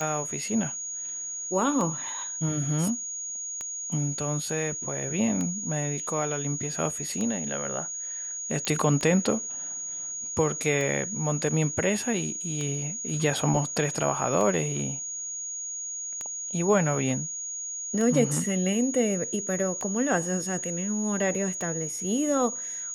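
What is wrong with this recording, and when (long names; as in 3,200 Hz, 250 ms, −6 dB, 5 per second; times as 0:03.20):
scratch tick 33 1/3 rpm −18 dBFS
whistle 6,700 Hz −32 dBFS
0:08.65: click −14 dBFS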